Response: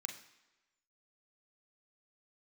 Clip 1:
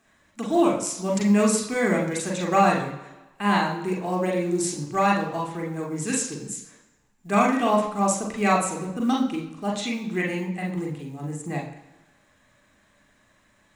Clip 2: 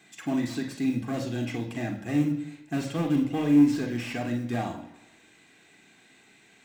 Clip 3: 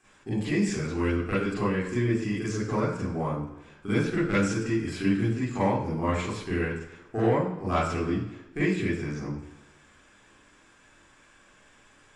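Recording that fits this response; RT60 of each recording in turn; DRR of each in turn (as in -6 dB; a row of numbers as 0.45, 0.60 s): 2; 1.1, 1.1, 1.1 s; -1.5, 3.5, -9.5 dB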